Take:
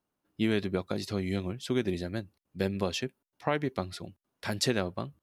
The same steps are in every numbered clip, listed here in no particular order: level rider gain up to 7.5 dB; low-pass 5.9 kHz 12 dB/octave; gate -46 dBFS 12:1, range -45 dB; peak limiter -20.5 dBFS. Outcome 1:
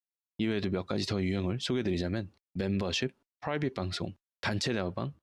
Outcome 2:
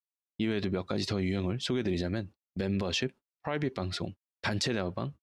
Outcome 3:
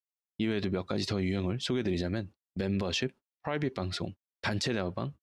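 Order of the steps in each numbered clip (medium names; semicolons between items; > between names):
level rider > gate > peak limiter > low-pass; low-pass > gate > level rider > peak limiter; gate > level rider > peak limiter > low-pass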